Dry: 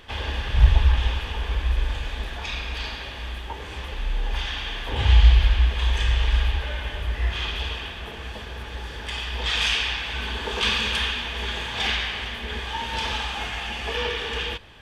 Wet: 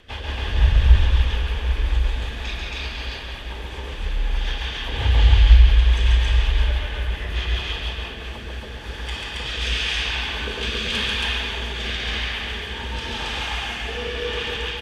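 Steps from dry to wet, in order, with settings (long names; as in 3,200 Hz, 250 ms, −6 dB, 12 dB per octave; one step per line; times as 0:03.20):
rotating-speaker cabinet horn 5.5 Hz, later 0.9 Hz, at 0:07.69
loudspeakers that aren't time-aligned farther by 48 metres −3 dB, 94 metres 0 dB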